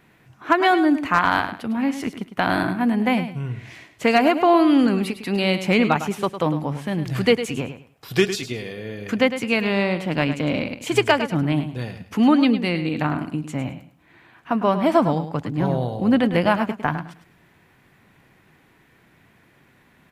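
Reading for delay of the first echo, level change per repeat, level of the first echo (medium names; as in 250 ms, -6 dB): 105 ms, -13.0 dB, -11.0 dB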